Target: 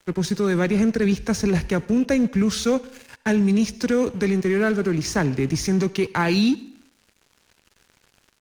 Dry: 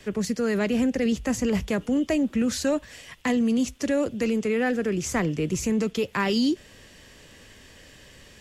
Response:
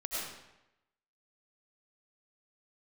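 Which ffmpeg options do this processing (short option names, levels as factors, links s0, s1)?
-filter_complex "[0:a]asetrate=38170,aresample=44100,atempo=1.15535,aeval=exprs='sgn(val(0))*max(abs(val(0))-0.00562,0)':c=same,asplit=2[s0][s1];[1:a]atrim=start_sample=2205,asetrate=61740,aresample=44100[s2];[s1][s2]afir=irnorm=-1:irlink=0,volume=0.133[s3];[s0][s3]amix=inputs=2:normalize=0,volume=1.58"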